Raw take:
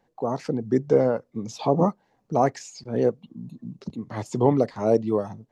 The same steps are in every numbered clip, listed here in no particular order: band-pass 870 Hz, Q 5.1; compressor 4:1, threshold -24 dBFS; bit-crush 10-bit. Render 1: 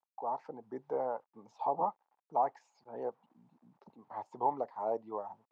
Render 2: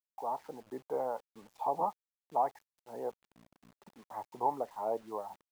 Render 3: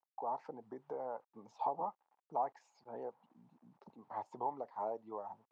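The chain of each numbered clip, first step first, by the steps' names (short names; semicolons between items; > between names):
bit-crush > band-pass > compressor; band-pass > compressor > bit-crush; compressor > bit-crush > band-pass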